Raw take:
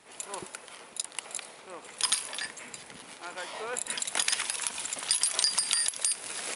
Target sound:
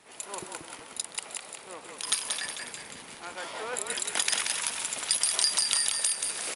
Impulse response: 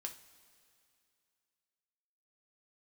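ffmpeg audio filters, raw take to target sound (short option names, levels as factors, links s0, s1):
-filter_complex "[0:a]asettb=1/sr,asplit=3[s0][s1][s2];[s0]atrim=end=1.284[s3];[s1]atrim=start=1.28:end=2.07,asetpts=PTS-STARTPTS,afade=t=in:d=0.004:c=qsin,afade=t=out:st=0.786:d=0.004:c=qsin,acompressor=threshold=0.02:ratio=6[s4];[s2]atrim=start=2.066[s5];[s3][s4]acrossfade=d=0.004:c1=hsin:c2=qsin[s6];[s6][s5]acrossfade=d=0.004:c1=qsin:c2=hsin,asplit=6[s7][s8][s9][s10][s11][s12];[s8]adelay=181,afreqshift=-36,volume=0.562[s13];[s9]adelay=362,afreqshift=-72,volume=0.248[s14];[s10]adelay=543,afreqshift=-108,volume=0.108[s15];[s11]adelay=724,afreqshift=-144,volume=0.0479[s16];[s12]adelay=905,afreqshift=-180,volume=0.0211[s17];[s7][s13][s14][s15][s16][s17]amix=inputs=6:normalize=0"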